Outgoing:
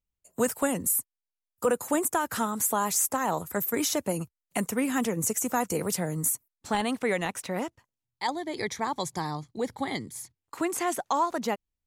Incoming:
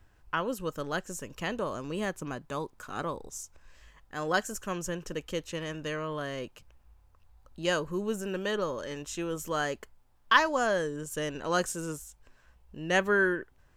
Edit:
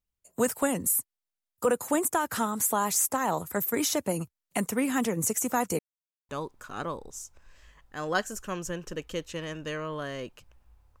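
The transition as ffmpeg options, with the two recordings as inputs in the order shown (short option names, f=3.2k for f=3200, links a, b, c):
-filter_complex "[0:a]apad=whole_dur=11,atrim=end=11,asplit=2[a][b];[a]atrim=end=5.79,asetpts=PTS-STARTPTS,afade=t=out:st=5.786:d=0.004:c=hsin[c];[b]atrim=start=5.79:end=6.29,asetpts=PTS-STARTPTS,volume=0[d];[1:a]atrim=start=2.48:end=7.19,asetpts=PTS-STARTPTS,afade=t=in:d=0.004:c=hsin[e];[c][d][e]concat=n=3:v=0:a=1"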